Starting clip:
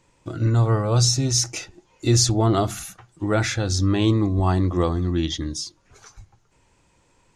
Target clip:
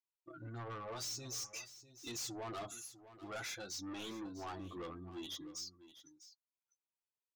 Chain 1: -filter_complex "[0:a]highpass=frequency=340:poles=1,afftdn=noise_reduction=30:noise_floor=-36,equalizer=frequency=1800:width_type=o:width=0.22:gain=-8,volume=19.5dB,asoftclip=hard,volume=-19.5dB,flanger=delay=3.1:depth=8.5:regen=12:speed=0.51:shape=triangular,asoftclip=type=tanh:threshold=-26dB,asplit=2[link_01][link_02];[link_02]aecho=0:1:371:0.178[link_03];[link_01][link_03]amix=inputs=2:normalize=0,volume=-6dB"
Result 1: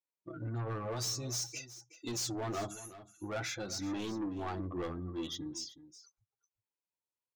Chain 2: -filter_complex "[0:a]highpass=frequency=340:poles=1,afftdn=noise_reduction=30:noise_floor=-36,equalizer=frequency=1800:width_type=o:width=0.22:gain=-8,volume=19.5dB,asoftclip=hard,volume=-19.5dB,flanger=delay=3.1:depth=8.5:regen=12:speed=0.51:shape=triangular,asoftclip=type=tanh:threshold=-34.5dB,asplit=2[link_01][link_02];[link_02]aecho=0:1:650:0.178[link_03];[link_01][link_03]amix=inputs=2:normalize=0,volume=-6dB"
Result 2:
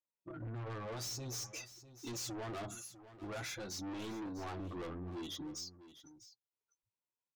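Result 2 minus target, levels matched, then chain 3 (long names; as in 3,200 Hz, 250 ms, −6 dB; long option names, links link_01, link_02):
250 Hz band +2.5 dB
-filter_complex "[0:a]highpass=frequency=1100:poles=1,afftdn=noise_reduction=30:noise_floor=-36,equalizer=frequency=1800:width_type=o:width=0.22:gain=-8,volume=19.5dB,asoftclip=hard,volume=-19.5dB,flanger=delay=3.1:depth=8.5:regen=12:speed=0.51:shape=triangular,asoftclip=type=tanh:threshold=-34.5dB,asplit=2[link_01][link_02];[link_02]aecho=0:1:650:0.178[link_03];[link_01][link_03]amix=inputs=2:normalize=0,volume=-6dB"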